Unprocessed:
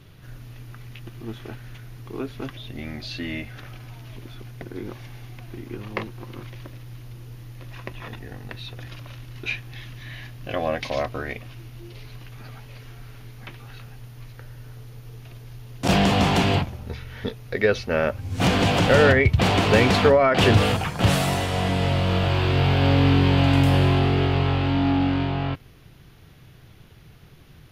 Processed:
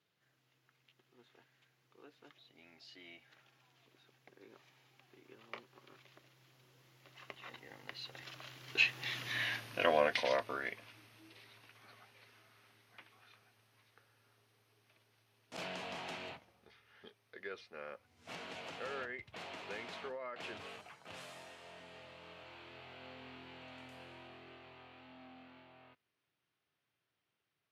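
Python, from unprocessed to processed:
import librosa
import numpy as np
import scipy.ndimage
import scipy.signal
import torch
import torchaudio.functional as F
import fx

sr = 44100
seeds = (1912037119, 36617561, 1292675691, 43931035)

y = fx.doppler_pass(x, sr, speed_mps=25, closest_m=8.5, pass_at_s=9.36)
y = fx.weighting(y, sr, curve='A')
y = y * librosa.db_to_amplitude(4.0)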